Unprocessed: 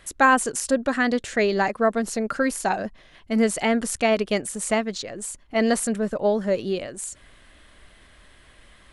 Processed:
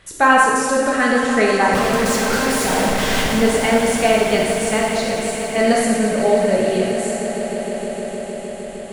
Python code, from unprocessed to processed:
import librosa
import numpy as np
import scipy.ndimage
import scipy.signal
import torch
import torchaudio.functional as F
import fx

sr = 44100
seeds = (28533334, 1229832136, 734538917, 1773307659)

y = fx.clip_1bit(x, sr, at=(1.73, 3.35))
y = fx.high_shelf(y, sr, hz=9800.0, db=-8.0)
y = fx.echo_swell(y, sr, ms=154, loudest=5, wet_db=-15.0)
y = fx.rev_gated(y, sr, seeds[0], gate_ms=490, shape='falling', drr_db=-3.0)
y = F.gain(torch.from_numpy(y), 1.5).numpy()